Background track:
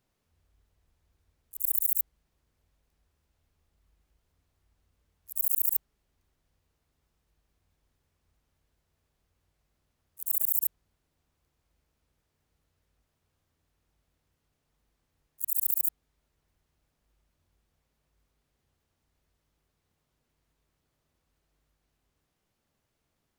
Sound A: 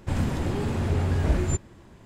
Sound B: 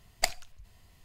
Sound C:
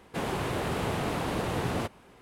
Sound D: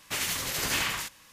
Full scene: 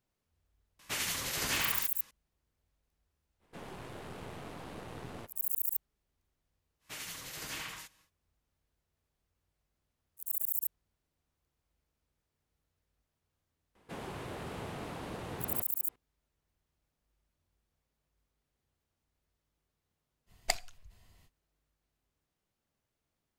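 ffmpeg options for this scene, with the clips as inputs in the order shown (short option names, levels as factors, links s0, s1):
-filter_complex "[4:a]asplit=2[s0][s1];[3:a]asplit=2[s2][s3];[0:a]volume=0.473[s4];[s0]aresample=32000,aresample=44100[s5];[s2]aeval=exprs='if(lt(val(0),0),0.447*val(0),val(0))':c=same[s6];[s1]aecho=1:1:6.4:0.35[s7];[s5]atrim=end=1.32,asetpts=PTS-STARTPTS,volume=0.596,afade=t=in:d=0.004:c=hsin,afade=t=out:st=1.316:d=0.004:c=hsin,adelay=790[s8];[s6]atrim=end=2.21,asetpts=PTS-STARTPTS,volume=0.224,afade=t=in:d=0.05,afade=t=out:st=2.16:d=0.05,adelay=3390[s9];[s7]atrim=end=1.32,asetpts=PTS-STARTPTS,volume=0.211,afade=t=in:d=0.1,afade=t=out:st=1.22:d=0.1,adelay=6790[s10];[s3]atrim=end=2.21,asetpts=PTS-STARTPTS,volume=0.266,afade=t=in:d=0.004:c=hsin,afade=t=out:st=2.206:d=0.004:c=hsin,adelay=13750[s11];[2:a]atrim=end=1.04,asetpts=PTS-STARTPTS,volume=0.631,afade=t=in:d=0.05,afade=t=out:st=0.99:d=0.05,adelay=20260[s12];[s4][s8][s9][s10][s11][s12]amix=inputs=6:normalize=0"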